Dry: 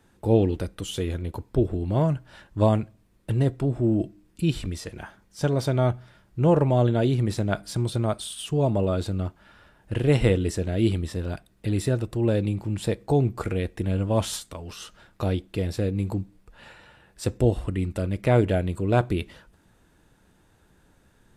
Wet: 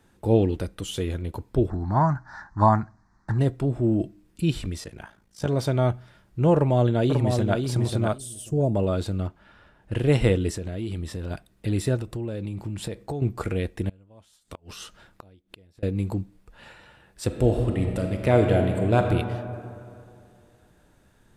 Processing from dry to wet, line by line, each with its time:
1.70–3.39 s: FFT filter 240 Hz 0 dB, 360 Hz -5 dB, 510 Hz -13 dB, 820 Hz +12 dB, 1.8 kHz +9 dB, 2.9 kHz -26 dB, 4.2 kHz -1 dB, 6.1 kHz +4 dB, 11 kHz -22 dB
4.84–5.48 s: AM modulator 55 Hz, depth 65%
6.55–7.61 s: echo throw 540 ms, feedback 15%, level -5 dB
8.18–8.75 s: high-order bell 2 kHz -14 dB 2.6 oct
9.27–9.92 s: treble shelf 6.3 kHz -10.5 dB
10.56–11.31 s: compression 5:1, threshold -27 dBFS
11.96–13.22 s: compression 10:1, threshold -26 dBFS
13.89–15.83 s: inverted gate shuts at -23 dBFS, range -29 dB
17.25–19.08 s: reverb throw, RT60 2.5 s, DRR 3.5 dB

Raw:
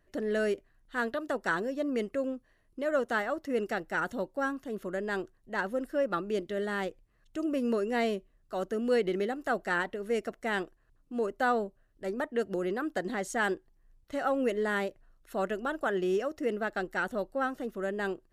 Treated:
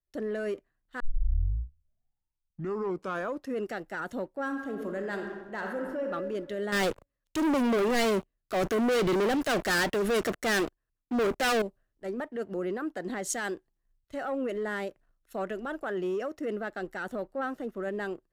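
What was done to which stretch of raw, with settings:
1.00 s: tape start 2.59 s
4.44–6.06 s: reverb throw, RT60 1.4 s, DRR 4 dB
6.72–11.62 s: waveshaping leveller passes 5
whole clip: waveshaping leveller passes 1; peak limiter -25.5 dBFS; three bands expanded up and down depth 70%

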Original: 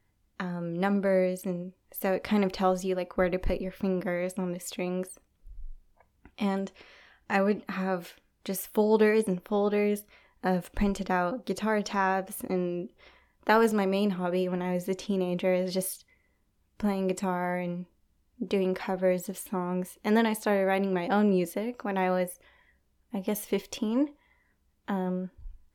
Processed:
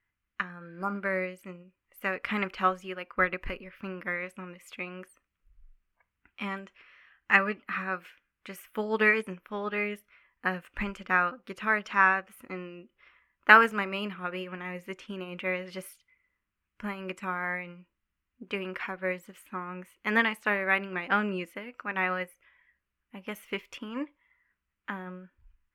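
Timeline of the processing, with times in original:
0.63–0.96 s: spectral replace 1.5–4.4 kHz
whole clip: high-order bell 1.8 kHz +14.5 dB; upward expansion 1.5:1, over -37 dBFS; trim -2 dB

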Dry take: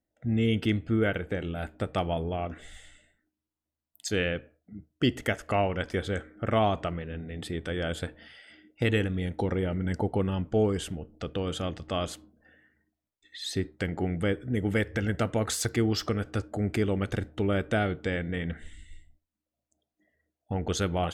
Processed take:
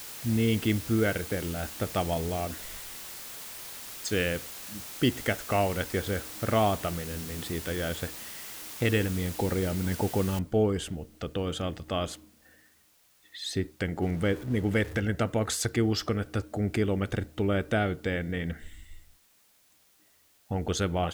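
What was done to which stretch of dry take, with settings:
7.72–8.85 s: Chebyshev low-pass 8.4 kHz, order 8
10.39 s: noise floor step -42 dB -64 dB
14.02–15.00 s: jump at every zero crossing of -41 dBFS

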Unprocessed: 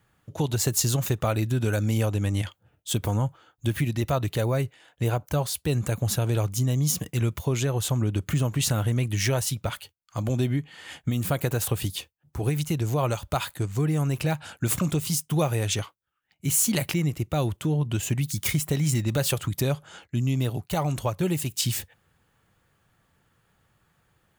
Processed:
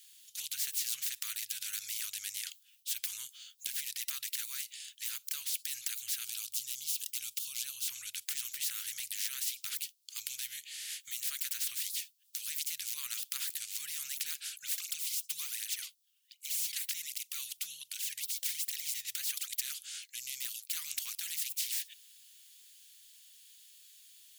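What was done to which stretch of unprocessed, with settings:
6.25–7.88 s: peaking EQ 1.9 kHz -14.5 dB 0.76 oct
14.49–19.50 s: cancelling through-zero flanger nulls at 1.3 Hz, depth 3.7 ms
whole clip: inverse Chebyshev high-pass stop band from 790 Hz, stop band 70 dB; spectrum-flattening compressor 4:1

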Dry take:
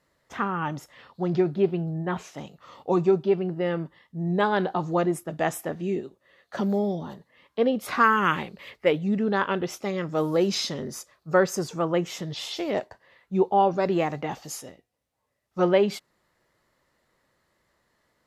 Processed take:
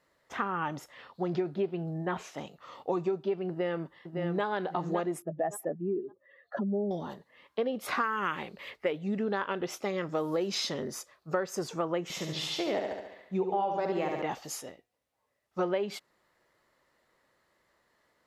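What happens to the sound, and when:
3.49–4.44 s: echo throw 560 ms, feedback 20%, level -7.5 dB
5.22–6.91 s: spectral contrast enhancement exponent 2
12.03–14.22 s: flutter echo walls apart 12 m, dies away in 0.79 s
whole clip: tone controls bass -7 dB, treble -3 dB; compression 6:1, threshold -27 dBFS

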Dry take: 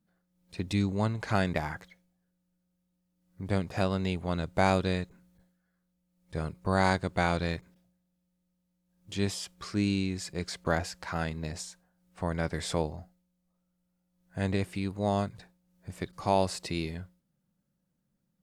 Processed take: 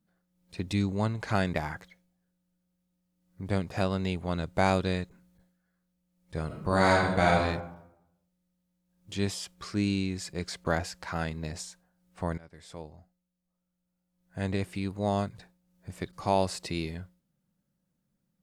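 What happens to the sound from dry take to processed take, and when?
6.46–7.40 s: reverb throw, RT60 0.85 s, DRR -2.5 dB
12.38–14.86 s: fade in, from -23.5 dB

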